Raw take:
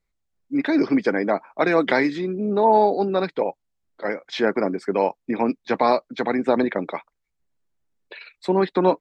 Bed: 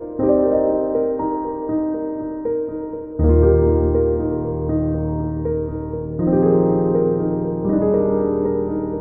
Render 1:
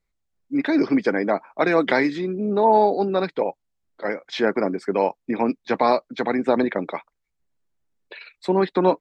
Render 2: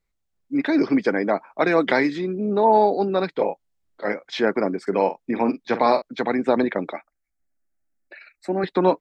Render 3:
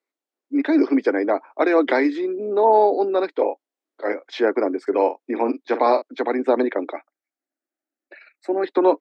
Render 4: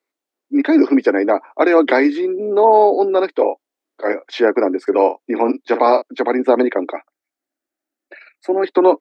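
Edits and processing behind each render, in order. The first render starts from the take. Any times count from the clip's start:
no audible change
3.35–4.14 s: doubling 29 ms -5 dB; 4.82–6.02 s: doubling 47 ms -11 dB; 6.93–8.64 s: static phaser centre 670 Hz, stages 8
steep high-pass 270 Hz 48 dB/octave; tilt EQ -2 dB/octave
trim +5 dB; peak limiter -2 dBFS, peak gain reduction 1.5 dB

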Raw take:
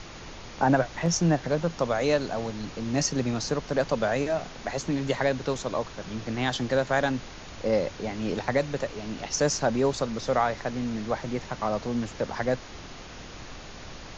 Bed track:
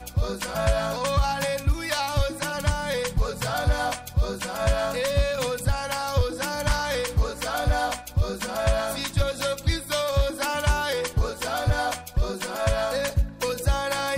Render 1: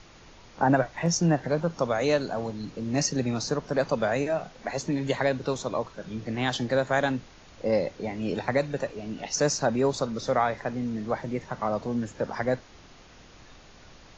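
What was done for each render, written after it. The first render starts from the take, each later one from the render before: noise print and reduce 9 dB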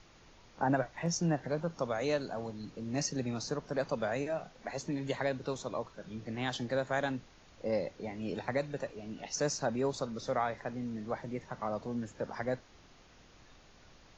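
trim -8 dB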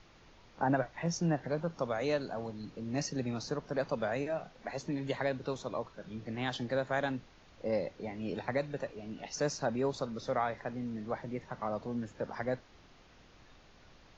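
low-pass 5.4 kHz 12 dB/octave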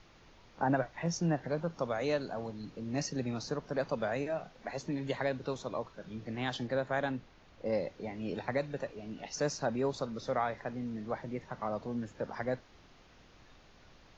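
6.67–7.66 s: treble shelf 4.6 kHz -6.5 dB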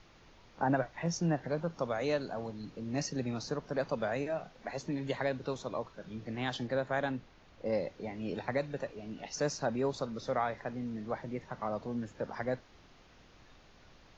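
no audible change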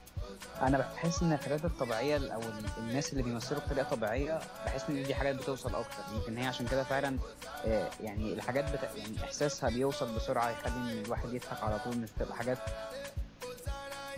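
add bed track -16.5 dB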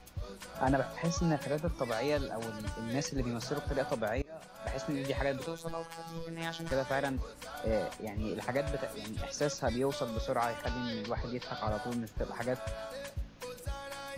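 4.22–4.81 s: fade in, from -23.5 dB; 5.46–6.71 s: robot voice 165 Hz; 10.66–11.69 s: resonant high shelf 6.5 kHz -13.5 dB, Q 3

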